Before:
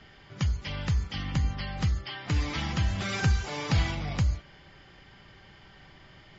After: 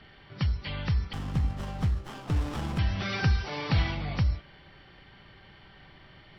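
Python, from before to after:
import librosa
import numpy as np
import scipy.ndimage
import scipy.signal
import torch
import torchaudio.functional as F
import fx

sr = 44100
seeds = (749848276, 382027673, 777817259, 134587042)

y = fx.freq_compress(x, sr, knee_hz=3600.0, ratio=1.5)
y = fx.running_max(y, sr, window=17, at=(1.13, 2.79))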